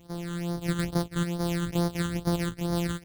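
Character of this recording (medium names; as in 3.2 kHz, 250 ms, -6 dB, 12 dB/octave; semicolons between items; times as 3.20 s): a buzz of ramps at a fixed pitch in blocks of 256 samples; phasing stages 8, 2.3 Hz, lowest notch 690–2600 Hz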